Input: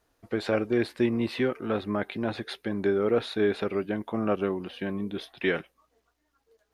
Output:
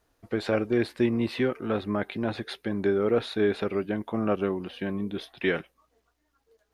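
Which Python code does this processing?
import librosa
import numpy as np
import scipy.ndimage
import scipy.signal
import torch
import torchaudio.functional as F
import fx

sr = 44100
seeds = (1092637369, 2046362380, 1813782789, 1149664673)

y = fx.low_shelf(x, sr, hz=160.0, db=3.0)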